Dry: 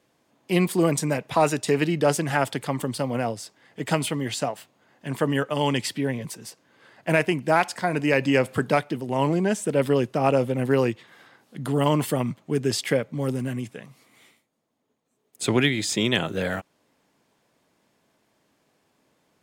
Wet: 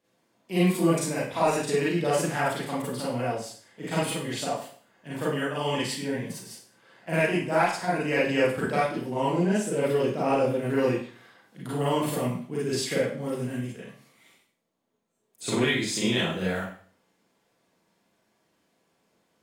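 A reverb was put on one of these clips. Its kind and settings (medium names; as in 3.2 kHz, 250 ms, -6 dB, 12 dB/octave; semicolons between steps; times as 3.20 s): Schroeder reverb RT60 0.48 s, combs from 33 ms, DRR -8 dB; trim -11 dB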